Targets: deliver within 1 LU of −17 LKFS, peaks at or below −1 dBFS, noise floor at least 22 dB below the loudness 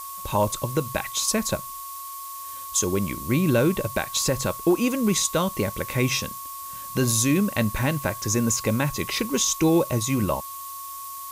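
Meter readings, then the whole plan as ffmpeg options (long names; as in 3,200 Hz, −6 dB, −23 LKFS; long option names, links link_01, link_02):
interfering tone 1,100 Hz; level of the tone −36 dBFS; background noise floor −37 dBFS; target noise floor −46 dBFS; integrated loudness −23.5 LKFS; sample peak −10.5 dBFS; target loudness −17.0 LKFS
→ -af "bandreject=frequency=1100:width=30"
-af "afftdn=noise_reduction=9:noise_floor=-37"
-af "volume=6.5dB"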